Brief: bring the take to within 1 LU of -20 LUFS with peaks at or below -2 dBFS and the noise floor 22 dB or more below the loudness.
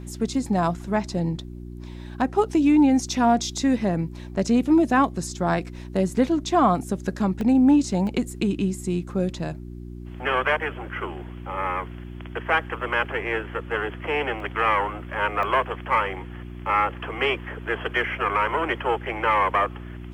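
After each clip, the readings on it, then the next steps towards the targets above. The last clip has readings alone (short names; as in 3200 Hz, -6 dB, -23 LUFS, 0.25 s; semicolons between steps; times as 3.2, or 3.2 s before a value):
dropouts 4; longest dropout 1.3 ms; hum 60 Hz; harmonics up to 360 Hz; hum level -35 dBFS; loudness -23.5 LUFS; peak -8.0 dBFS; loudness target -20.0 LUFS
-> interpolate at 7.41/8.07/14.4/15.43, 1.3 ms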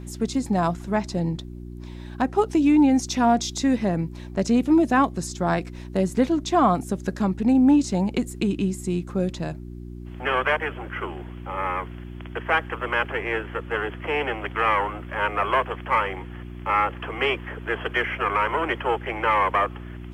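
dropouts 0; hum 60 Hz; harmonics up to 360 Hz; hum level -35 dBFS
-> de-hum 60 Hz, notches 6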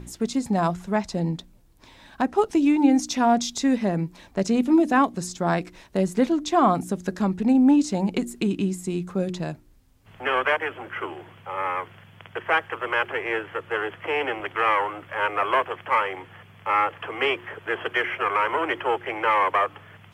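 hum none; loudness -24.0 LUFS; peak -7.5 dBFS; loudness target -20.0 LUFS
-> gain +4 dB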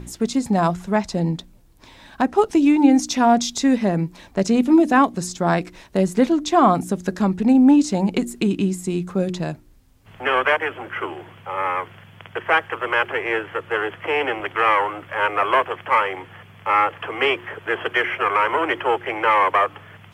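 loudness -20.0 LUFS; peak -3.5 dBFS; noise floor -49 dBFS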